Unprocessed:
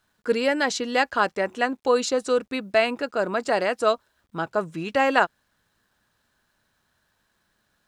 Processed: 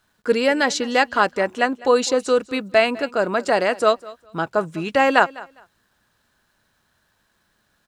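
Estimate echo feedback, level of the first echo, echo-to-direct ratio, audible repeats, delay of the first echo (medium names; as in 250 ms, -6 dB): 20%, -20.5 dB, -20.5 dB, 2, 203 ms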